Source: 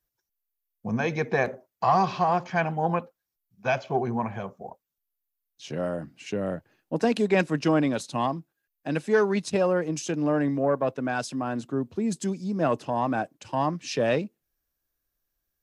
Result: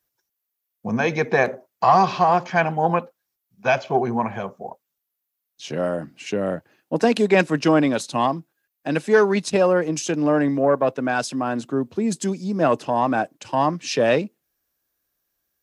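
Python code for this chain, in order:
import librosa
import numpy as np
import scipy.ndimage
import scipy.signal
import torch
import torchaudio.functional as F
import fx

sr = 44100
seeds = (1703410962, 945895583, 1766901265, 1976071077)

y = fx.highpass(x, sr, hz=180.0, slope=6)
y = F.gain(torch.from_numpy(y), 6.5).numpy()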